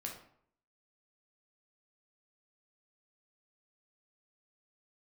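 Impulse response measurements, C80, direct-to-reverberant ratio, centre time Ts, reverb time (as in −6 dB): 10.0 dB, −0.5 dB, 27 ms, 0.65 s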